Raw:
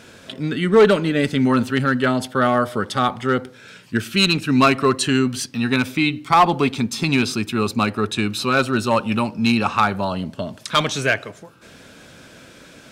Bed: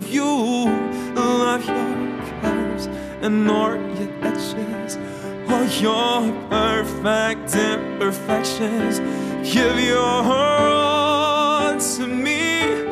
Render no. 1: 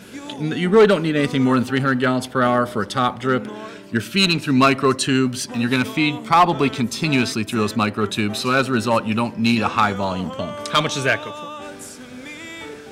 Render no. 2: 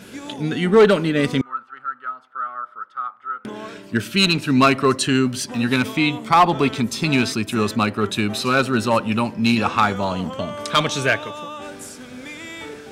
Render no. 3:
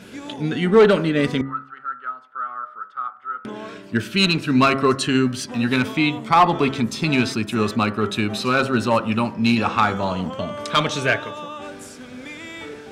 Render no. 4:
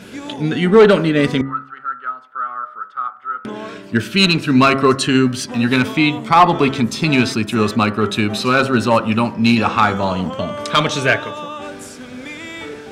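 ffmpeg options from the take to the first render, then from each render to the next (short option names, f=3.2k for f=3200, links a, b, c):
-filter_complex "[1:a]volume=-15.5dB[a];[0:a][a]amix=inputs=2:normalize=0"
-filter_complex "[0:a]asettb=1/sr,asplit=3[a][b][c];[a]atrim=end=1.414[d];[b]atrim=start=1.41:end=3.45,asetpts=PTS-STARTPTS,afade=t=in:d=0.004:c=qsin,afade=t=out:st=2.036:d=0.004:c=qsin,bandpass=f=1.3k:t=q:w=13[e];[c]atrim=start=3.446[f];[d][e]acrossfade=d=0.004:c1=hsin:c2=qsin[g];[g][f]acrossfade=d=0.004:c1=qsin:c2=hsin"
-af "highshelf=f=6.9k:g=-8,bandreject=f=67.95:t=h:w=4,bandreject=f=135.9:t=h:w=4,bandreject=f=203.85:t=h:w=4,bandreject=f=271.8:t=h:w=4,bandreject=f=339.75:t=h:w=4,bandreject=f=407.7:t=h:w=4,bandreject=f=475.65:t=h:w=4,bandreject=f=543.6:t=h:w=4,bandreject=f=611.55:t=h:w=4,bandreject=f=679.5:t=h:w=4,bandreject=f=747.45:t=h:w=4,bandreject=f=815.4:t=h:w=4,bandreject=f=883.35:t=h:w=4,bandreject=f=951.3:t=h:w=4,bandreject=f=1.01925k:t=h:w=4,bandreject=f=1.0872k:t=h:w=4,bandreject=f=1.15515k:t=h:w=4,bandreject=f=1.2231k:t=h:w=4,bandreject=f=1.29105k:t=h:w=4,bandreject=f=1.359k:t=h:w=4,bandreject=f=1.42695k:t=h:w=4,bandreject=f=1.4949k:t=h:w=4,bandreject=f=1.56285k:t=h:w=4,bandreject=f=1.6308k:t=h:w=4,bandreject=f=1.69875k:t=h:w=4,bandreject=f=1.7667k:t=h:w=4,bandreject=f=1.83465k:t=h:w=4,bandreject=f=1.9026k:t=h:w=4,bandreject=f=1.97055k:t=h:w=4"
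-af "volume=4.5dB,alimiter=limit=-1dB:level=0:latency=1"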